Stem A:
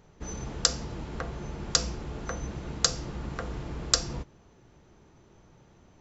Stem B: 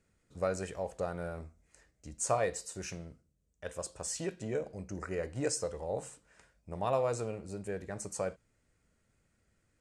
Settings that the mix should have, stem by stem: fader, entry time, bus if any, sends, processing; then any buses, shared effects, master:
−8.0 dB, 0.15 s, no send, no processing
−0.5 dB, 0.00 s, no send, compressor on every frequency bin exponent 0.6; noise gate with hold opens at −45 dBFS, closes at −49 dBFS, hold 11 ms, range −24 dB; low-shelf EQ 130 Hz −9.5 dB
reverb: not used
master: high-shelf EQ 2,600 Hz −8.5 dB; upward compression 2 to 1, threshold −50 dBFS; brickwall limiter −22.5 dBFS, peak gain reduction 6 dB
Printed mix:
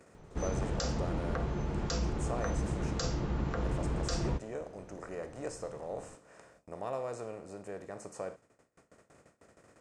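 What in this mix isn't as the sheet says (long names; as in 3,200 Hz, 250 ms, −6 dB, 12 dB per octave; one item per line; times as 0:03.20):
stem A −8.0 dB → +3.5 dB
stem B −0.5 dB → −7.5 dB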